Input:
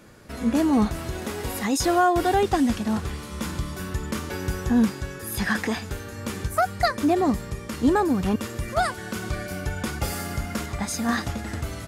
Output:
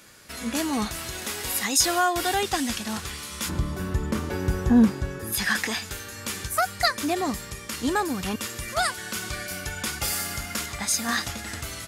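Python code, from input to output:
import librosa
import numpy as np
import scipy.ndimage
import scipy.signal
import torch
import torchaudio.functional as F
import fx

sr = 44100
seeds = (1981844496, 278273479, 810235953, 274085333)

y = fx.tilt_shelf(x, sr, db=fx.steps((0.0, -8.5), (3.48, 3.0), (5.32, -7.5)), hz=1300.0)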